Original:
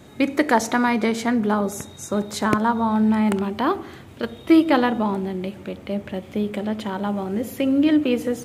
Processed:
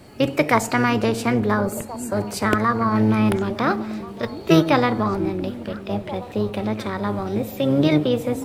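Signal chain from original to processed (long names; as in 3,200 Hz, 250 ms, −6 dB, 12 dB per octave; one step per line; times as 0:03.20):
sub-octave generator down 1 octave, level −6 dB
formants moved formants +3 semitones
echo through a band-pass that steps 690 ms, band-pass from 260 Hz, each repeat 1.4 octaves, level −10 dB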